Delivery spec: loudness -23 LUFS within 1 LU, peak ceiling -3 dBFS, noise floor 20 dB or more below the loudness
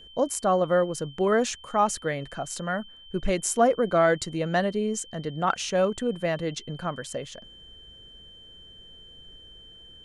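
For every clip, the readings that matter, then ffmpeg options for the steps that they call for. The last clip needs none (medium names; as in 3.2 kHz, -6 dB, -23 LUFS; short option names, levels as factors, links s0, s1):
steady tone 3.1 kHz; tone level -47 dBFS; loudness -26.5 LUFS; peak level -9.0 dBFS; loudness target -23.0 LUFS
-> -af "bandreject=f=3100:w=30"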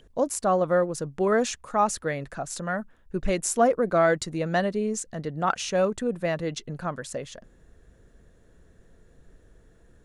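steady tone not found; loudness -26.5 LUFS; peak level -9.0 dBFS; loudness target -23.0 LUFS
-> -af "volume=1.5"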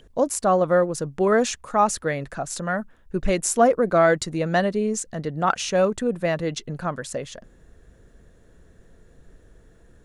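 loudness -23.0 LUFS; peak level -5.5 dBFS; noise floor -54 dBFS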